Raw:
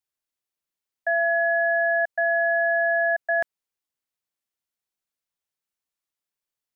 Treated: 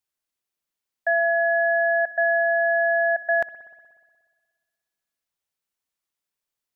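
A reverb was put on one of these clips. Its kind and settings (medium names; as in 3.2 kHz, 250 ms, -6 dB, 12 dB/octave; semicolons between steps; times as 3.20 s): spring tank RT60 1.6 s, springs 60 ms, chirp 50 ms, DRR 15.5 dB; trim +2 dB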